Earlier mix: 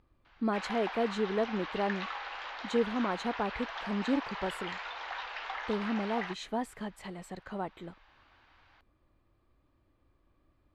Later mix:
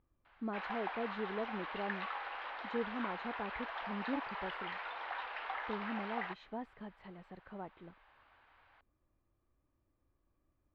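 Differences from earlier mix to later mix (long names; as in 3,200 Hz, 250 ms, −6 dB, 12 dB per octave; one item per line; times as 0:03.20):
speech −8.5 dB
master: add high-frequency loss of the air 320 metres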